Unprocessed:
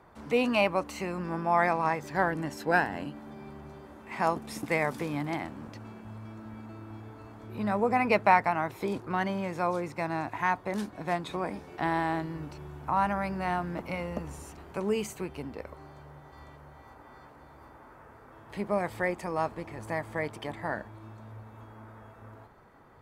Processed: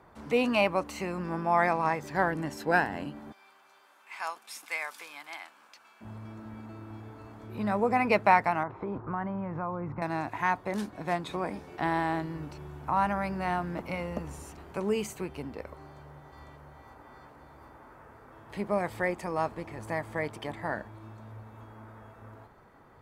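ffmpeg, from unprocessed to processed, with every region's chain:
ffmpeg -i in.wav -filter_complex "[0:a]asettb=1/sr,asplit=3[link_01][link_02][link_03];[link_01]atrim=end=3.324[link_04];[link_02]atrim=start=3.32:end=6.01,asetpts=PTS-STARTPTS,afade=type=in:duration=0.004:curve=qsin,afade=type=out:start_time=2.686:duration=0.004:curve=qsin,highpass=1400,bandreject=frequency=1900:width=10[link_05];[link_03]atrim=start=6.006[link_06];[link_04][link_05]acrossfade=duration=0.004:curve1=hsin:curve2=qsin[link_07];[link_07][link_06]acrossfade=duration=0.004:curve1=qsin:curve2=hsin,asettb=1/sr,asplit=3[link_08][link_09][link_10];[link_08]atrim=end=8.634[link_11];[link_09]atrim=start=8.63:end=10.02,asetpts=PTS-STARTPTS,afade=type=in:duration=0.004:curve=qsin,afade=type=out:start_time=1.386:duration=0.004:curve=qsin,asubboost=boost=8:cutoff=210,acompressor=threshold=-31dB:ratio=4:attack=3.2:release=140:knee=1:detection=peak,lowpass=frequency=1200:width_type=q:width=1.7[link_12];[link_10]atrim=start=10.016[link_13];[link_11][link_12]acrossfade=duration=0.004:curve1=hsin:curve2=qsin[link_14];[link_14][link_13]acrossfade=duration=0.004:curve1=qsin:curve2=hsin" out.wav

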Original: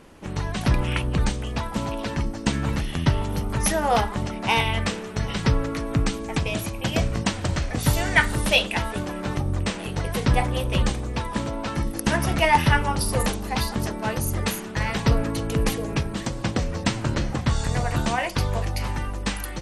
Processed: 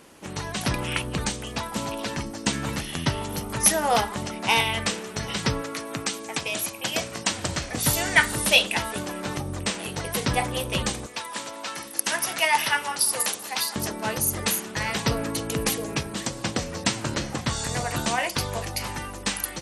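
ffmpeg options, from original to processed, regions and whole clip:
ffmpeg -i in.wav -filter_complex "[0:a]asettb=1/sr,asplit=3[link_01][link_02][link_03];[link_01]atrim=end=5.614[link_04];[link_02]atrim=start=5.61:end=7.3,asetpts=PTS-STARTPTS,afade=type=in:duration=0.004:curve=qsin,afade=type=out:start_time=1.686:duration=0.004:curve=qsin,highpass=81,lowshelf=frequency=290:gain=-9.5[link_05];[link_03]atrim=start=7.296[link_06];[link_04][link_05]acrossfade=duration=0.004:curve1=hsin:curve2=qsin[link_07];[link_07][link_06]acrossfade=duration=0.004:curve1=qsin:curve2=hsin,asettb=1/sr,asplit=3[link_08][link_09][link_10];[link_08]atrim=end=11.064[link_11];[link_09]atrim=start=11.06:end=13.76,asetpts=PTS-STARTPTS,afade=type=in:duration=0.004:curve=qsin,afade=type=out:start_time=2.696:duration=0.004:curve=qsin,highpass=frequency=990:poles=1,aecho=1:1:194:0.141,atrim=end_sample=119070[link_12];[link_10]atrim=start=13.756[link_13];[link_11][link_12]acrossfade=duration=0.004:curve1=hsin:curve2=qsin[link_14];[link_14][link_13]acrossfade=duration=0.004:curve1=qsin:curve2=hsin,highpass=frequency=190:poles=1,highshelf=frequency=4300:gain=9.5,volume=-1dB" out.wav

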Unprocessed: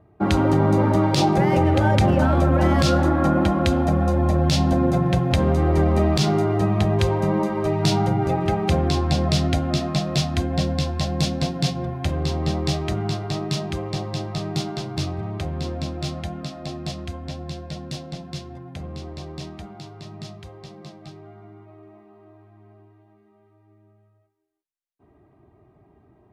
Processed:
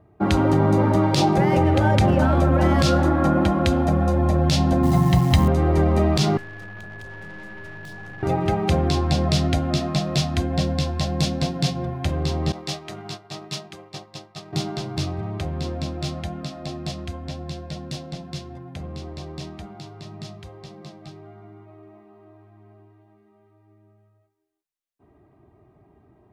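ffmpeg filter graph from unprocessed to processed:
ffmpeg -i in.wav -filter_complex "[0:a]asettb=1/sr,asplit=3[link_01][link_02][link_03];[link_01]atrim=end=4.834[link_04];[link_02]atrim=start=4.83:end=5.48,asetpts=PTS-STARTPTS,afade=type=in:duration=0.004:curve=qsin,afade=type=out:start_time=0.646:duration=0.004:curve=qsin,aecho=1:1:1:0.7,atrim=end_sample=28665,acrusher=bits=7:dc=4:mix=0:aa=0.000001[link_05];[link_03]atrim=start=5.476[link_06];[link_04][link_05]acrossfade=duration=0.004:curve1=hsin:curve2=qsin[link_07];[link_07][link_06]acrossfade=duration=0.004:curve1=qsin:curve2=hsin,asettb=1/sr,asplit=3[link_08][link_09][link_10];[link_08]atrim=end=6.374[link_11];[link_09]atrim=start=6.37:end=8.23,asetpts=PTS-STARTPTS,afade=type=in:duration=0.004:curve=qsin,afade=type=out:start_time=1.856:duration=0.004:curve=qsin,aeval=exprs='(tanh(31.6*val(0)+0.75)-tanh(0.75))/31.6':channel_layout=same,acrossover=split=180|1600[link_12][link_13][link_14];[link_12]acompressor=threshold=-40dB:ratio=4[link_15];[link_13]acompressor=threshold=-46dB:ratio=4[link_16];[link_14]acompressor=threshold=-51dB:ratio=4[link_17];[link_15][link_16][link_17]amix=inputs=3:normalize=0,aeval=exprs='val(0)+0.0112*sin(2*PI*1700*n/s)':channel_layout=same[link_18];[link_10]atrim=start=8.226[link_19];[link_11][link_18]acrossfade=duration=0.004:curve1=hsin:curve2=qsin[link_20];[link_20][link_19]acrossfade=duration=0.004:curve1=qsin:curve2=hsin,asettb=1/sr,asplit=3[link_21][link_22][link_23];[link_21]atrim=end=12.524[link_24];[link_22]atrim=start=12.52:end=14.53,asetpts=PTS-STARTPTS,afade=type=in:duration=0.004:curve=qsin,afade=type=out:start_time=2.006:duration=0.004:curve=qsin,highpass=frequency=110:width=0.5412,highpass=frequency=110:width=1.3066,agate=range=-33dB:threshold=-23dB:ratio=3:release=100:detection=peak,lowshelf=frequency=490:gain=-9.5[link_25];[link_23]atrim=start=14.526[link_26];[link_24][link_25]acrossfade=duration=0.004:curve1=hsin:curve2=qsin[link_27];[link_27][link_26]acrossfade=duration=0.004:curve1=qsin:curve2=hsin" out.wav

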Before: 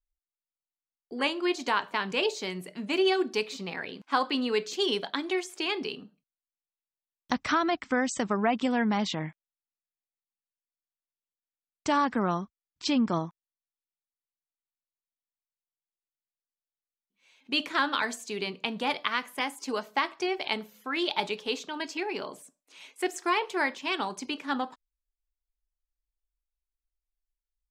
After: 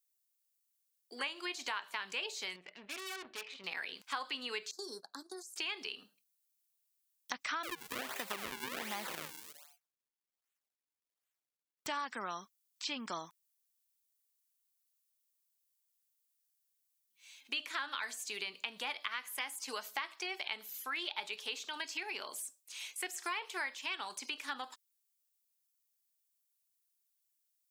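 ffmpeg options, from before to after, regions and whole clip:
ffmpeg -i in.wav -filter_complex "[0:a]asettb=1/sr,asplit=3[link_01][link_02][link_03];[link_01]atrim=end=2.564[link_04];[link_02]atrim=start=2.56:end=3.64,asetpts=PTS-STARTPTS,afade=type=in:duration=0.004:curve=qsin,afade=type=out:start_time=1.076:duration=0.004:curve=qsin,lowpass=frequency=2700:width=0.5412,lowpass=frequency=2700:width=1.3066,aeval=exprs='(tanh(63.1*val(0)+0.7)-tanh(0.7))/63.1':channel_layout=same[link_05];[link_03]atrim=start=3.636[link_06];[link_04][link_05]acrossfade=duration=0.004:curve1=hsin:curve2=qsin[link_07];[link_07][link_06]acrossfade=duration=0.004:curve1=qsin:curve2=hsin,asettb=1/sr,asplit=3[link_08][link_09][link_10];[link_08]atrim=end=4.714[link_11];[link_09]atrim=start=4.71:end=5.56,asetpts=PTS-STARTPTS,afade=type=in:duration=0.004:curve=qsin,afade=type=out:start_time=0.846:duration=0.004:curve=qsin,agate=range=-17dB:threshold=-34dB:ratio=16:release=100:detection=peak,acrossover=split=450|1900[link_12][link_13][link_14];[link_12]acompressor=threshold=-34dB:ratio=4[link_15];[link_13]acompressor=threshold=-47dB:ratio=4[link_16];[link_14]acompressor=threshold=-45dB:ratio=4[link_17];[link_15][link_16][link_17]amix=inputs=3:normalize=0,asuperstop=centerf=2600:order=8:qfactor=0.93[link_18];[link_10]atrim=start=5.556[link_19];[link_11][link_18]acrossfade=duration=0.004:curve1=hsin:curve2=qsin[link_20];[link_20][link_19]acrossfade=duration=0.004:curve1=qsin:curve2=hsin,asettb=1/sr,asplit=3[link_21][link_22][link_23];[link_21]atrim=end=7.634[link_24];[link_22]atrim=start=7.63:end=11.87,asetpts=PTS-STARTPTS,afade=type=in:duration=0.004:curve=qsin,afade=type=out:start_time=4.236:duration=0.004:curve=qsin,asplit=5[link_25][link_26][link_27][link_28][link_29];[link_26]adelay=116,afreqshift=140,volume=-13.5dB[link_30];[link_27]adelay=232,afreqshift=280,volume=-20.2dB[link_31];[link_28]adelay=348,afreqshift=420,volume=-27dB[link_32];[link_29]adelay=464,afreqshift=560,volume=-33.7dB[link_33];[link_25][link_30][link_31][link_32][link_33]amix=inputs=5:normalize=0,atrim=end_sample=186984,acrusher=samples=40:mix=1:aa=0.000001:lfo=1:lforange=64:lforate=1.3[link_34];[link_23]atrim=start=11.866[link_35];[link_24][link_34]acrossfade=duration=0.004:curve1=hsin:curve2=qsin[link_36];[link_36][link_35]acrossfade=duration=0.004:curve1=qsin:curve2=hsin,acrossover=split=3000[link_37][link_38];[link_38]acompressor=threshold=-51dB:ratio=4:attack=1:release=60[link_39];[link_37][link_39]amix=inputs=2:normalize=0,aderivative,acompressor=threshold=-50dB:ratio=3,volume=12.5dB" out.wav

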